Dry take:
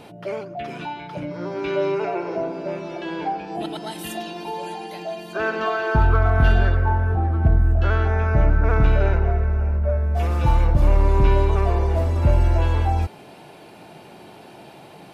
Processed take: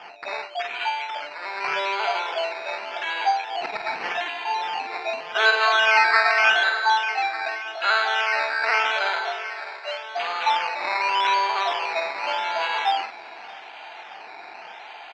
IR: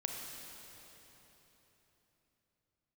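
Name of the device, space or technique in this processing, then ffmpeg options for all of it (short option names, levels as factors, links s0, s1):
circuit-bent sampling toy: -filter_complex "[0:a]asettb=1/sr,asplit=3[s0][s1][s2];[s0]atrim=end=4.894[s3];[s1]atrim=start=4.89:end=5.6,asetpts=PTS-STARTPTS,afade=t=in:d=0.004:c=qsin,afade=t=out:st=0.706:d=0.004:c=qsin,equalizer=f=470:w=4.6:g=12[s4];[s2]atrim=start=5.596[s5];[s3][s4]acrossfade=d=0.004:c1=hsin:c2=qsin[s6];[s6][s5]acrossfade=d=0.004:c1=qsin:c2=hsin,highpass=f=690:w=0.5412,highpass=f=690:w=1.3066,asplit=2[s7][s8];[s8]adelay=48,volume=0.422[s9];[s7][s9]amix=inputs=2:normalize=0,acrusher=samples=11:mix=1:aa=0.000001:lfo=1:lforange=6.6:lforate=0.85,highpass=430,equalizer=f=560:t=q:w=4:g=-9,equalizer=f=1100:t=q:w=4:g=-4,equalizer=f=2300:t=q:w=4:g=3,lowpass=f=4100:w=0.5412,lowpass=f=4100:w=1.3066,aecho=1:1:620|1240|1860|2480:0.0794|0.0453|0.0258|0.0147,volume=2.66"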